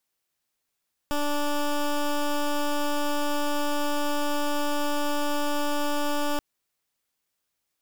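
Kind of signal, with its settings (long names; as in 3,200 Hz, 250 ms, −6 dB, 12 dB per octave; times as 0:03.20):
pulse wave 292 Hz, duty 14% −25 dBFS 5.28 s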